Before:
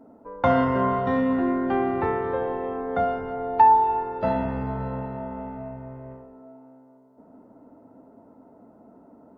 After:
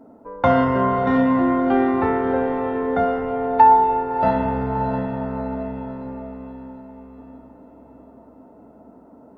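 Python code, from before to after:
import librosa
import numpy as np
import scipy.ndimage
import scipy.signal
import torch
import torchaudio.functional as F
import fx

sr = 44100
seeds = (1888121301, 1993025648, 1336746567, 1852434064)

y = fx.echo_diffused(x, sr, ms=665, feedback_pct=44, wet_db=-8.0)
y = F.gain(torch.from_numpy(y), 3.5).numpy()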